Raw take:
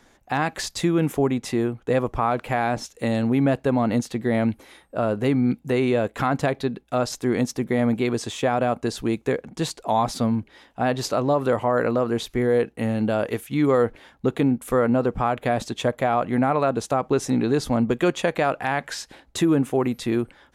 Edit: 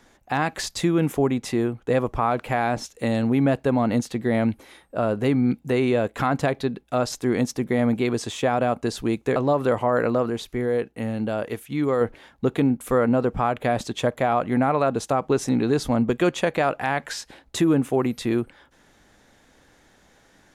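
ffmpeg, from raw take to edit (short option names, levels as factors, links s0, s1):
-filter_complex "[0:a]asplit=4[s0][s1][s2][s3];[s0]atrim=end=9.362[s4];[s1]atrim=start=11.168:end=12.112[s5];[s2]atrim=start=12.108:end=13.822,asetpts=PTS-STARTPTS,volume=0.668[s6];[s3]atrim=start=13.818[s7];[s4][s5]acrossfade=d=0.004:c1=hsin:c2=hsin[s8];[s8][s6]acrossfade=d=0.004:c1=hsin:c2=hsin[s9];[s9][s7]acrossfade=d=0.004:c1=hsin:c2=hsin"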